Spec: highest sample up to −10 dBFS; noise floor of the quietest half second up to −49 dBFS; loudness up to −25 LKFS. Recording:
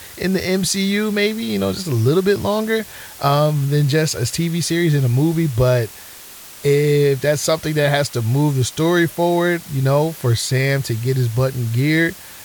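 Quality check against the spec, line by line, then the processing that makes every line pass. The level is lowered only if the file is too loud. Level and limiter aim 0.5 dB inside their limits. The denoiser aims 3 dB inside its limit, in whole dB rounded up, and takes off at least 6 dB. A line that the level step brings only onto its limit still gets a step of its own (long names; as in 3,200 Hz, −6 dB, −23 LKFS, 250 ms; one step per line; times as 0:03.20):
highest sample −4.5 dBFS: out of spec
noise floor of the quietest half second −38 dBFS: out of spec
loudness −18.0 LKFS: out of spec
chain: broadband denoise 7 dB, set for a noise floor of −38 dBFS
level −7.5 dB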